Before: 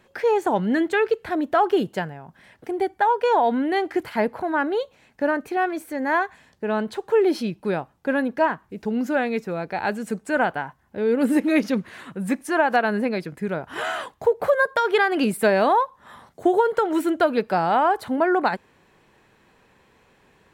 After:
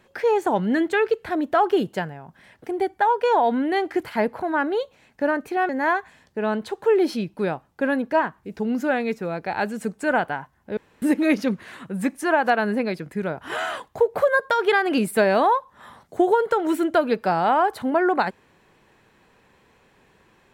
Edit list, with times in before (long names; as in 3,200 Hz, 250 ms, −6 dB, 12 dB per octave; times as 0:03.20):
0:05.69–0:05.95: remove
0:11.03–0:11.28: fill with room tone